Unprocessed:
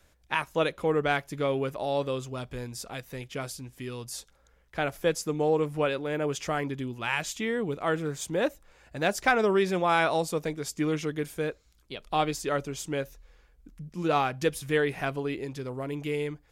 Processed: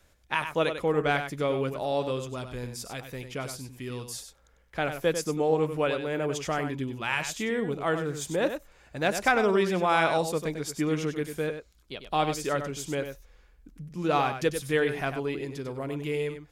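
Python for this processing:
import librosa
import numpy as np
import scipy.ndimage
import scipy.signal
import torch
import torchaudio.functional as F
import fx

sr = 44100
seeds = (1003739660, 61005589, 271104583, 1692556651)

y = x + 10.0 ** (-8.5 / 20.0) * np.pad(x, (int(97 * sr / 1000.0), 0))[:len(x)]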